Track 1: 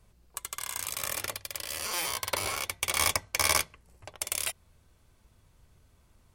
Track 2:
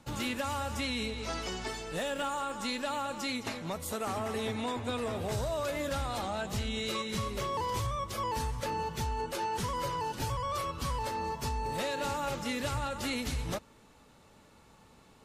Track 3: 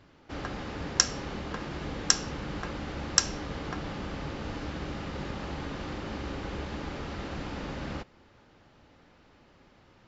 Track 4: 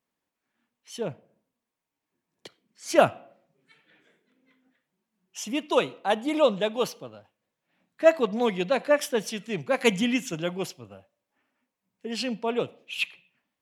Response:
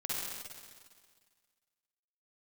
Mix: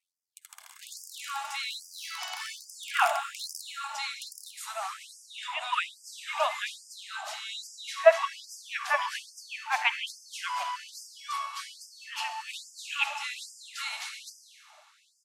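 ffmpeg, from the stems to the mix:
-filter_complex "[0:a]aeval=exprs='val(0)*sin(2*PI*44*n/s)':channel_layout=same,volume=-10.5dB,asplit=2[link_01][link_02];[link_02]volume=-14.5dB[link_03];[1:a]lowpass=11000,adelay=750,volume=0dB,asplit=2[link_04][link_05];[link_05]volume=-8dB[link_06];[2:a]lowpass=1300,acompressor=threshold=-44dB:ratio=6,adelay=200,volume=-11dB[link_07];[3:a]lowpass=frequency=3000:width=0.5412,lowpass=frequency=3000:width=1.3066,volume=0.5dB,asplit=2[link_08][link_09];[link_09]volume=-11.5dB[link_10];[4:a]atrim=start_sample=2205[link_11];[link_03][link_06][link_10]amix=inputs=3:normalize=0[link_12];[link_12][link_11]afir=irnorm=-1:irlink=0[link_13];[link_01][link_04][link_07][link_08][link_13]amix=inputs=5:normalize=0,highshelf=frequency=10000:gain=-5,afftfilt=real='re*gte(b*sr/1024,600*pow(4800/600,0.5+0.5*sin(2*PI*1.2*pts/sr)))':imag='im*gte(b*sr/1024,600*pow(4800/600,0.5+0.5*sin(2*PI*1.2*pts/sr)))':win_size=1024:overlap=0.75"

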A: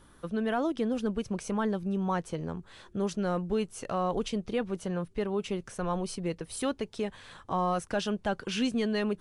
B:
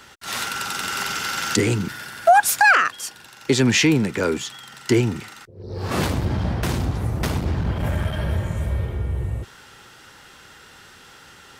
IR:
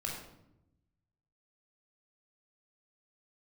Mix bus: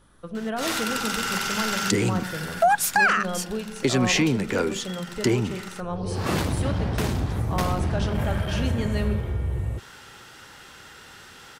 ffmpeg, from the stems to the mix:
-filter_complex "[0:a]volume=-3.5dB,asplit=2[link_01][link_02];[link_02]volume=-5.5dB[link_03];[1:a]acompressor=threshold=-27dB:ratio=1.5,adelay=350,volume=0.5dB[link_04];[2:a]atrim=start_sample=2205[link_05];[link_03][link_05]afir=irnorm=-1:irlink=0[link_06];[link_01][link_04][link_06]amix=inputs=3:normalize=0"

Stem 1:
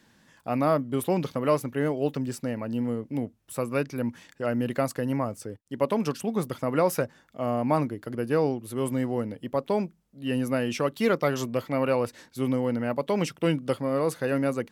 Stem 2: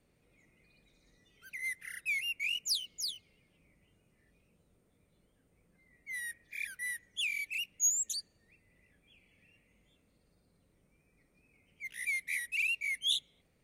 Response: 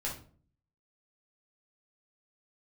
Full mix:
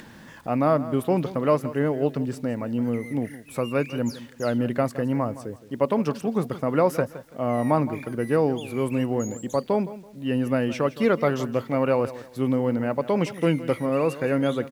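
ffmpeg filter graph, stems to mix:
-filter_complex "[0:a]highshelf=frequency=3700:gain=-10.5,acompressor=mode=upward:threshold=-37dB:ratio=2.5,volume=3dB,asplit=3[link_01][link_02][link_03];[link_02]volume=-15.5dB[link_04];[1:a]acompressor=threshold=-41dB:ratio=6,adelay=1400,volume=-3dB,asplit=2[link_05][link_06];[link_06]volume=-8dB[link_07];[link_03]apad=whole_len=662962[link_08];[link_05][link_08]sidechaingate=range=-33dB:threshold=-38dB:ratio=16:detection=peak[link_09];[2:a]atrim=start_sample=2205[link_10];[link_07][link_10]afir=irnorm=-1:irlink=0[link_11];[link_04]aecho=0:1:166|332|498|664:1|0.27|0.0729|0.0197[link_12];[link_01][link_09][link_11][link_12]amix=inputs=4:normalize=0,acrusher=bits=9:mix=0:aa=0.000001"

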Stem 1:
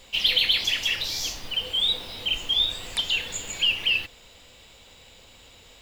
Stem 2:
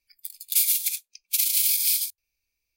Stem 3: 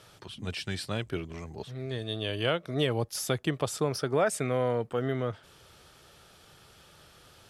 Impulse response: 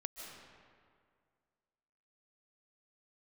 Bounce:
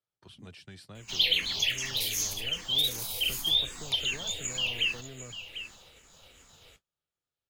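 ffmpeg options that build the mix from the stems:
-filter_complex "[0:a]equalizer=frequency=6500:width=7.9:gain=13.5,asplit=2[link_01][link_02];[link_02]afreqshift=-2.6[link_03];[link_01][link_03]amix=inputs=2:normalize=1,adelay=950,volume=-2.5dB,asplit=2[link_04][link_05];[link_05]volume=-11.5dB[link_06];[1:a]adelay=1450,volume=-16dB[link_07];[2:a]acrossover=split=100|220[link_08][link_09][link_10];[link_08]acompressor=threshold=-53dB:ratio=4[link_11];[link_09]acompressor=threshold=-45dB:ratio=4[link_12];[link_10]acompressor=threshold=-44dB:ratio=4[link_13];[link_11][link_12][link_13]amix=inputs=3:normalize=0,volume=-6dB[link_14];[link_06]aecho=0:1:747:1[link_15];[link_04][link_07][link_14][link_15]amix=inputs=4:normalize=0,agate=range=-34dB:threshold=-54dB:ratio=16:detection=peak"

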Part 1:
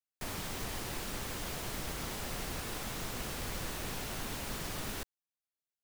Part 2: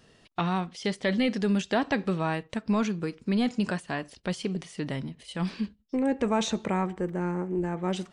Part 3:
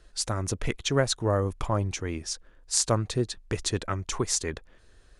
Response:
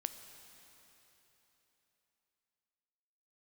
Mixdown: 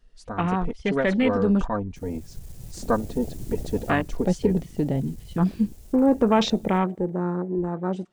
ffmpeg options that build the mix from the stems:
-filter_complex "[0:a]firequalizer=gain_entry='entry(470,0);entry(1100,-13);entry(7000,4)':delay=0.05:min_phase=1,aeval=exprs='clip(val(0),-1,0.00841)':channel_layout=same,adelay=1750,volume=2dB,asplit=2[link_01][link_02];[link_02]volume=-8.5dB[link_03];[1:a]volume=2.5dB,asplit=3[link_04][link_05][link_06];[link_04]atrim=end=1.66,asetpts=PTS-STARTPTS,afade=type=out:start_time=1.656:duration=0.004:curve=hsin[link_07];[link_05]atrim=start=1.66:end=3.84,asetpts=PTS-STARTPTS,volume=0[link_08];[link_06]atrim=start=3.84,asetpts=PTS-STARTPTS,afade=type=in:duration=0.004:curve=hsin[link_09];[link_07][link_08][link_09]concat=n=3:v=0:a=1,asplit=3[link_10][link_11][link_12];[link_11]volume=-23.5dB[link_13];[2:a]highshelf=frequency=6500:gain=-11,aecho=1:1:4.2:0.9,volume=-3dB[link_14];[link_12]apad=whole_len=339078[link_15];[link_01][link_15]sidechaincompress=threshold=-39dB:ratio=4:attack=16:release=929[link_16];[3:a]atrim=start_sample=2205[link_17];[link_03][link_13]amix=inputs=2:normalize=0[link_18];[link_18][link_17]afir=irnorm=-1:irlink=0[link_19];[link_16][link_10][link_14][link_19]amix=inputs=4:normalize=0,afwtdn=0.0282,dynaudnorm=framelen=340:gausssize=11:maxgain=5.5dB"

